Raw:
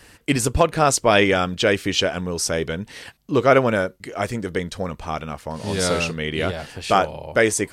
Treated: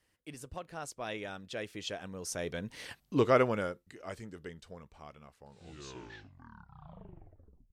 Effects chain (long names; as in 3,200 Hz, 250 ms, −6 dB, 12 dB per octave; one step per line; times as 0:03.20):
turntable brake at the end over 2.32 s
source passing by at 0:03.00, 20 m/s, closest 5.3 metres
level −6 dB